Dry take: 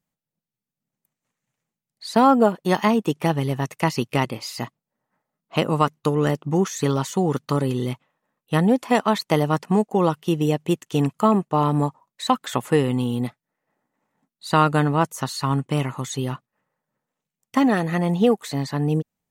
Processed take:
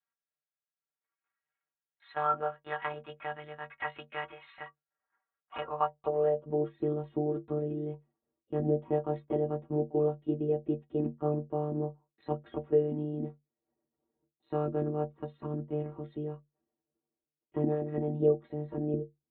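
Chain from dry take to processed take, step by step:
in parallel at +2.5 dB: downward compressor, threshold −25 dBFS, peak gain reduction 13.5 dB
on the sum: one-pitch LPC vocoder at 8 kHz 150 Hz
band-pass filter sweep 1,500 Hz → 330 Hz, 0:05.41–0:06.77
stiff-string resonator 69 Hz, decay 0.27 s, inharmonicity 0.03

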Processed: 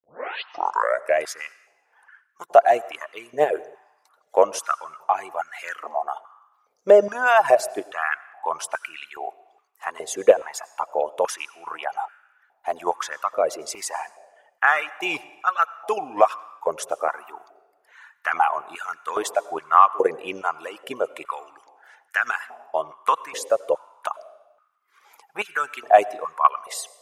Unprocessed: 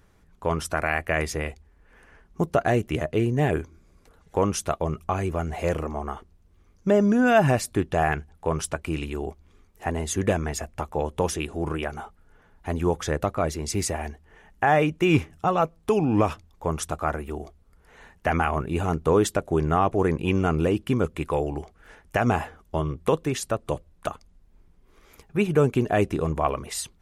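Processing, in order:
turntable start at the beginning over 1.18 s
in parallel at −1.5 dB: output level in coarse steps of 20 dB
on the sum: noise gate with hold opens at −49 dBFS
reverb reduction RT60 1.7 s
on a send at −19 dB: convolution reverb RT60 1.2 s, pre-delay 81 ms
on the sum: high-pass on a step sequencer 2.4 Hz 520–1,500 Hz
level −2.5 dB

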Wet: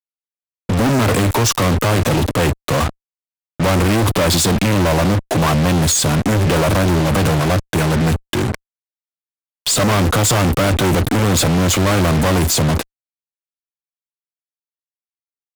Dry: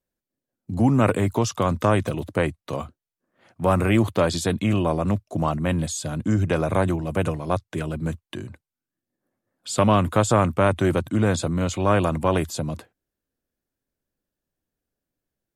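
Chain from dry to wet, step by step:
transient designer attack +3 dB, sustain +7 dB
fuzz pedal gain 43 dB, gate −36 dBFS

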